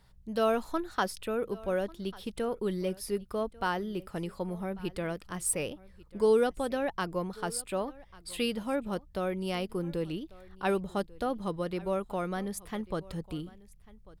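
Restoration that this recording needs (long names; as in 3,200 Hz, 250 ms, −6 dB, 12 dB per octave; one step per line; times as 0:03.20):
hum removal 61.1 Hz, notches 3
echo removal 1,144 ms −21.5 dB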